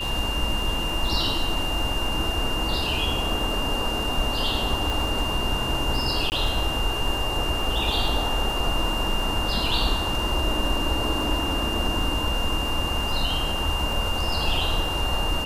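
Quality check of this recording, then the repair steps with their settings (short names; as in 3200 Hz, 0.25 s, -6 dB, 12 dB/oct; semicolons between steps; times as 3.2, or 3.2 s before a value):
crackle 20/s -28 dBFS
tone 2800 Hz -28 dBFS
4.9 pop
6.3–6.32 gap 19 ms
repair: de-click; notch 2800 Hz, Q 30; interpolate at 6.3, 19 ms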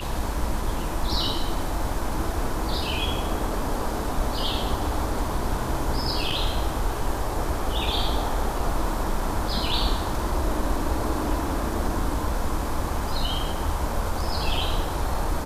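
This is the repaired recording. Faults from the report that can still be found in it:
4.9 pop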